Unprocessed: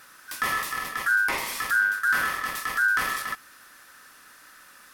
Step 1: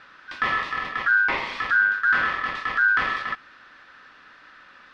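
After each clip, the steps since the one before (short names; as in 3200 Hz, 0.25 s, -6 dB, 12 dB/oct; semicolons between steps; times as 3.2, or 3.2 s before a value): LPF 3800 Hz 24 dB/oct; gain +3 dB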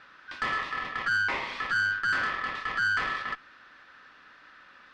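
tube stage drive 18 dB, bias 0.25; gain -3.5 dB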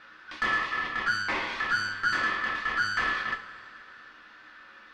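two-slope reverb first 0.25 s, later 2.6 s, from -18 dB, DRR 2 dB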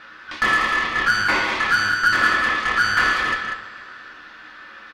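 added harmonics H 6 -28 dB, 8 -25 dB, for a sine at -15.5 dBFS; loudspeakers at several distances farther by 55 m -10 dB, 66 m -7 dB; gain +8.5 dB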